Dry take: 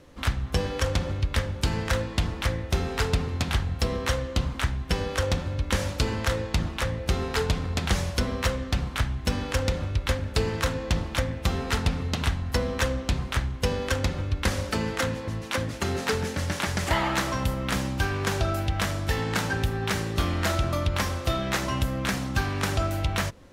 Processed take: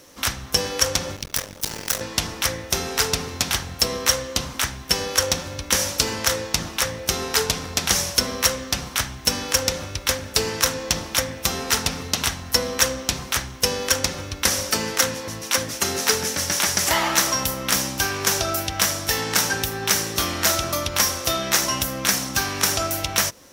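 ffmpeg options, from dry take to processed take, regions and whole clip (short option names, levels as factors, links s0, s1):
-filter_complex "[0:a]asettb=1/sr,asplit=3[s0][s1][s2];[s0]atrim=end=1.164[s3];[s1]atrim=start=1.16:end=2.01,asetpts=PTS-STARTPTS,afade=t=in:d=0.004:c=qsin,afade=t=out:st=0.846:d=0.004:c=qsin,highshelf=f=7800:g=8.5,aeval=exprs='max(val(0),0)':c=same,tremolo=f=43:d=0.621[s4];[s2]atrim=start=2.006[s5];[s3][s4]acrossfade=d=0.004:c1=hsin:c2=qsin[s6];[s6][s5]acrossfade=d=0.004:c1=qsin:c2=hsin,aemphasis=mode=production:type=bsi,acontrast=70,equalizer=f=5700:t=o:w=0.29:g=9,volume=0.75"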